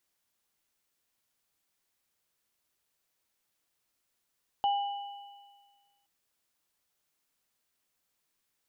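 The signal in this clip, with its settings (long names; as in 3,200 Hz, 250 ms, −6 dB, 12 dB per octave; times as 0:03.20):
inharmonic partials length 1.42 s, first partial 806 Hz, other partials 2,960 Hz, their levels −13 dB, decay 1.57 s, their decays 1.90 s, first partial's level −23 dB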